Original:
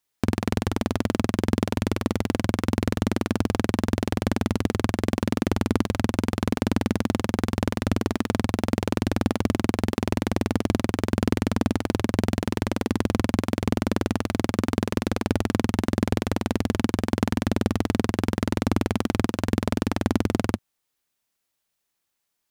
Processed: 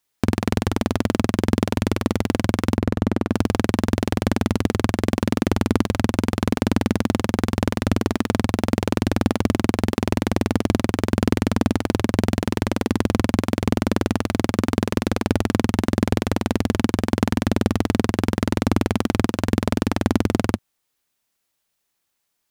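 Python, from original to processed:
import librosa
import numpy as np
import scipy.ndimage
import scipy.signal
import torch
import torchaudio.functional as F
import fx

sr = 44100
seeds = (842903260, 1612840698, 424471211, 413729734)

y = fx.high_shelf(x, sr, hz=2600.0, db=-12.0, at=(2.77, 3.32))
y = y * 10.0 ** (3.5 / 20.0)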